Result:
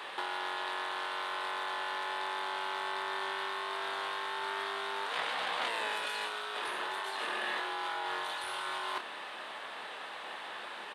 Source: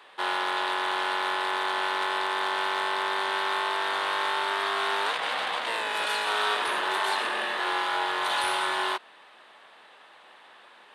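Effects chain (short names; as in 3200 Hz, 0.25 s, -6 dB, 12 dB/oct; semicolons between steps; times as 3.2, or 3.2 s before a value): negative-ratio compressor -37 dBFS, ratio -1; doubler 28 ms -8.5 dB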